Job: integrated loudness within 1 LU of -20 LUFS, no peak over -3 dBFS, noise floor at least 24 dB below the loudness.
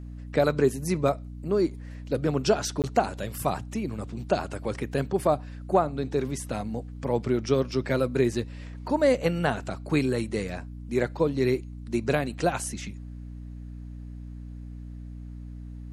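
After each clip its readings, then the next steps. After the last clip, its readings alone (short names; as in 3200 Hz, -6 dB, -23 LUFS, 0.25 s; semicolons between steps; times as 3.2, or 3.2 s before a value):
dropouts 1; longest dropout 18 ms; hum 60 Hz; harmonics up to 300 Hz; hum level -37 dBFS; loudness -27.5 LUFS; peak -8.5 dBFS; loudness target -20.0 LUFS
-> interpolate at 2.82, 18 ms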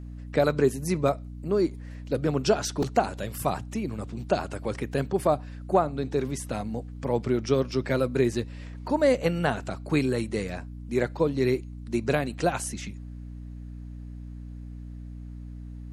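dropouts 0; hum 60 Hz; harmonics up to 300 Hz; hum level -37 dBFS
-> de-hum 60 Hz, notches 5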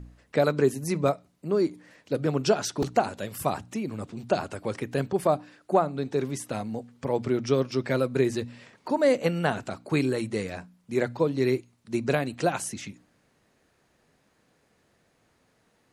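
hum none; loudness -27.5 LUFS; peak -8.5 dBFS; loudness target -20.0 LUFS
-> gain +7.5 dB; limiter -3 dBFS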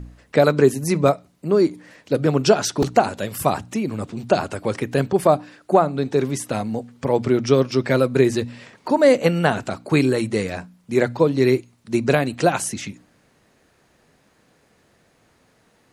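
loudness -20.5 LUFS; peak -3.0 dBFS; noise floor -60 dBFS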